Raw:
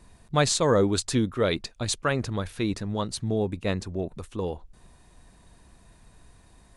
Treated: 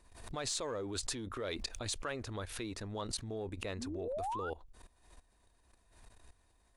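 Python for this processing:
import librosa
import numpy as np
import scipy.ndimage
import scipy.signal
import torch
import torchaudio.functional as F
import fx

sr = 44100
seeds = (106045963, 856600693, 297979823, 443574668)

p1 = np.clip(x, -10.0 ** (-20.5 / 20.0), 10.0 ** (-20.5 / 20.0))
p2 = x + (p1 * librosa.db_to_amplitude(-10.0))
p3 = fx.spec_paint(p2, sr, seeds[0], shape='rise', start_s=3.77, length_s=0.73, low_hz=210.0, high_hz=1500.0, level_db=-30.0)
p4 = fx.level_steps(p3, sr, step_db=16)
p5 = fx.peak_eq(p4, sr, hz=160.0, db=-13.0, octaves=0.98)
p6 = fx.pre_swell(p5, sr, db_per_s=75.0)
y = p6 * librosa.db_to_amplitude(-4.5)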